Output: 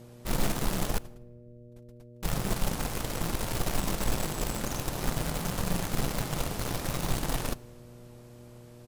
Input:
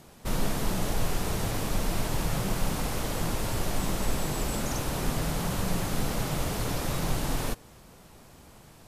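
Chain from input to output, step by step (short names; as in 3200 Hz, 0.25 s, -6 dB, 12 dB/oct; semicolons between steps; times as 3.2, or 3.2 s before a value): 0.98–2.23 gate -20 dBFS, range -51 dB; outdoor echo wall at 28 m, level -25 dB; in parallel at -5.5 dB: bit-crush 4-bit; on the sum: buzz 120 Hz, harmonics 5, -45 dBFS -4 dB/oct; on a send at -20 dB: reverb RT60 1.4 s, pre-delay 6 ms; on the sum: gain -5 dB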